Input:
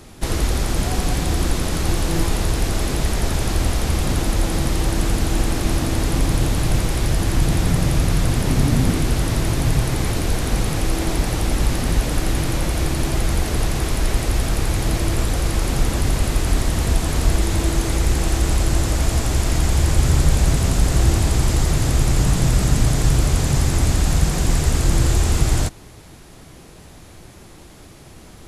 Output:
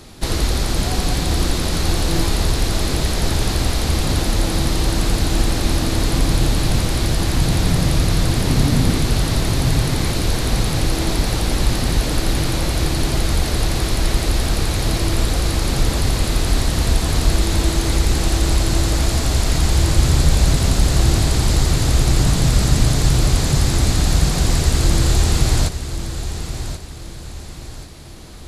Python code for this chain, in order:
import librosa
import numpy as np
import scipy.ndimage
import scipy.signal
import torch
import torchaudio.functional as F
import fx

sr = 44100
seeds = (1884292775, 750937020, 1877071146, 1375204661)

y = fx.peak_eq(x, sr, hz=4200.0, db=6.5, octaves=0.55)
y = fx.echo_feedback(y, sr, ms=1082, feedback_pct=38, wet_db=-10.5)
y = y * librosa.db_to_amplitude(1.0)